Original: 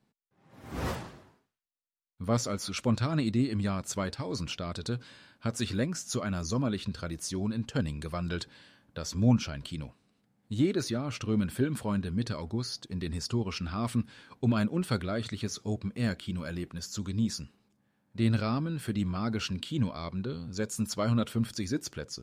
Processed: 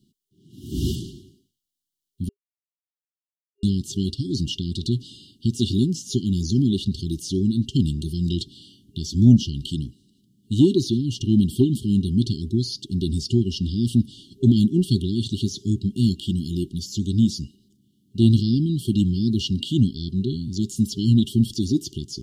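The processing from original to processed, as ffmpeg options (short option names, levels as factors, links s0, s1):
-filter_complex "[0:a]asplit=3[s0][s1][s2];[s0]atrim=end=2.29,asetpts=PTS-STARTPTS,afade=t=out:st=2.286:d=0.004:c=hsin[s3];[s1]atrim=start=2.29:end=3.63,asetpts=PTS-STARTPTS,volume=0[s4];[s2]atrim=start=3.63,asetpts=PTS-STARTPTS,afade=t=in:d=0.004:c=hsin[s5];[s3][s4][s5]concat=n=3:v=0:a=1,acrossover=split=4400[s6][s7];[s7]acompressor=threshold=0.00398:ratio=4:attack=1:release=60[s8];[s6][s8]amix=inputs=2:normalize=0,afftfilt=real='re*(1-between(b*sr/4096,400,2800))':imag='im*(1-between(b*sr/4096,400,2800))':win_size=4096:overlap=0.75,acontrast=62,volume=1.68"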